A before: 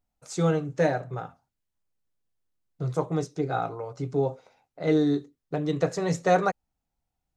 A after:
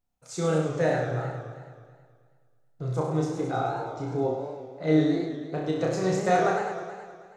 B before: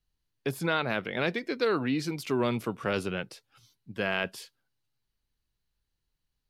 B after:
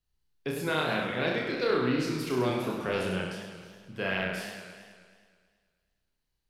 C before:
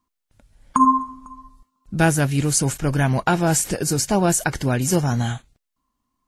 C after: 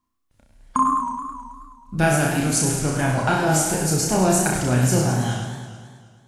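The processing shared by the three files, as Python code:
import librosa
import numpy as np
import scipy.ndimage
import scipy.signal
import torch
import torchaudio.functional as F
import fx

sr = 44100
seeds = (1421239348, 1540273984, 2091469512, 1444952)

y = fx.room_flutter(x, sr, wall_m=5.5, rt60_s=0.66)
y = fx.echo_warbled(y, sr, ms=107, feedback_pct=68, rate_hz=2.8, cents=165, wet_db=-8.5)
y = y * 10.0 ** (-3.5 / 20.0)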